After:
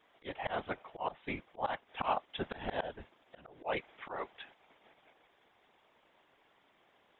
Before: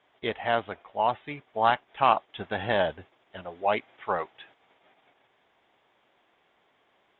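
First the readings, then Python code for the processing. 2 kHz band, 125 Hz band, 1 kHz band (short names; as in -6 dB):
-10.0 dB, -9.0 dB, -12.0 dB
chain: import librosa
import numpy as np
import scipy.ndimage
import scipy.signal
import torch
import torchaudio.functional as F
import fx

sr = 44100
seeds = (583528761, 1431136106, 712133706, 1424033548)

y = fx.whisperise(x, sr, seeds[0])
y = fx.auto_swell(y, sr, attack_ms=224.0)
y = y * librosa.db_to_amplitude(-1.5)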